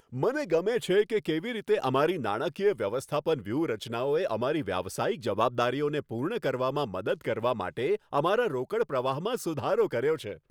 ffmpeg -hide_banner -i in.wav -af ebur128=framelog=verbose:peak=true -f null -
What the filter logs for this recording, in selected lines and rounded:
Integrated loudness:
  I:         -28.9 LUFS
  Threshold: -38.9 LUFS
Loudness range:
  LRA:         1.6 LU
  Threshold: -49.2 LUFS
  LRA low:   -29.7 LUFS
  LRA high:  -28.1 LUFS
True peak:
  Peak:      -10.3 dBFS